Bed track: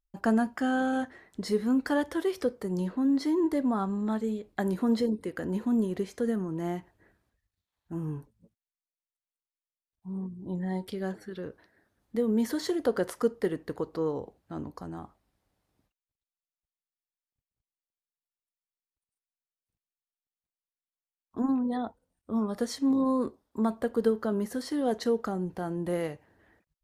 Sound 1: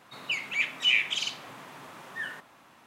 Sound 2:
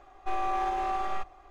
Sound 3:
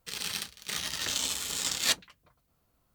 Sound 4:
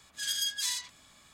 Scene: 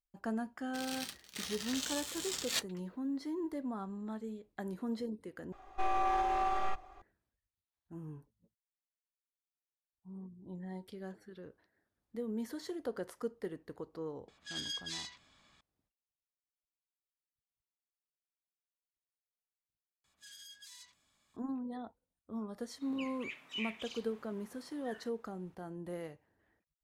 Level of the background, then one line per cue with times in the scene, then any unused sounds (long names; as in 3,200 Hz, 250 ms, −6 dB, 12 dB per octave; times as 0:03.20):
bed track −12 dB
0:00.67: mix in 3 −8.5 dB
0:05.52: overwrite with 2 −2 dB
0:14.28: mix in 4 −6.5 dB + low-pass filter 4,800 Hz
0:20.04: mix in 4 −17 dB + brickwall limiter −27 dBFS
0:22.69: mix in 1 −17.5 dB